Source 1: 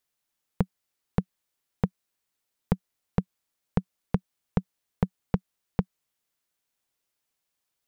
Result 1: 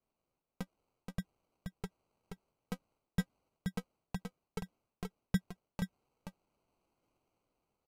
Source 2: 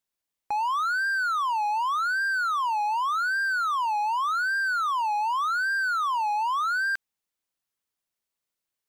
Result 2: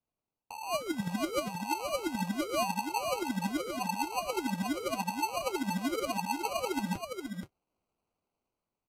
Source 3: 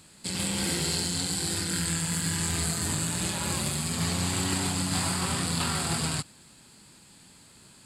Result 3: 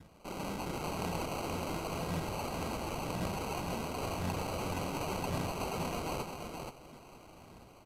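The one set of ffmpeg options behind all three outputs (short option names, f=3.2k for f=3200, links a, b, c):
-filter_complex "[0:a]adynamicequalizer=threshold=0.00891:dfrequency=2600:dqfactor=1:tfrequency=2600:tqfactor=1:attack=5:release=100:ratio=0.375:range=2:mode=boostabove:tftype=bell,acrossover=split=640[a][b];[b]dynaudnorm=f=140:g=9:m=6dB[c];[a][c]amix=inputs=2:normalize=0,highshelf=f=5.4k:g=-7,areverse,acompressor=threshold=-33dB:ratio=5,areverse,aphaser=in_gain=1:out_gain=1:delay=4.4:decay=0.71:speed=0.93:type=triangular,acrusher=samples=25:mix=1:aa=0.000001,aecho=1:1:477:0.531,aresample=32000,aresample=44100,volume=-5dB"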